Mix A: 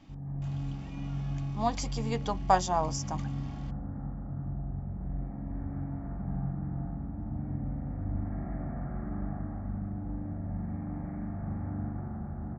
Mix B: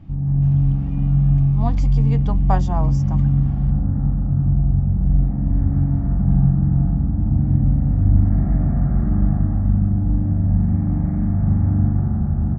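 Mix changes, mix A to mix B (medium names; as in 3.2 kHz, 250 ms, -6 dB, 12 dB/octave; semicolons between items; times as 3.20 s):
background +7.0 dB; master: add tone controls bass +13 dB, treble -12 dB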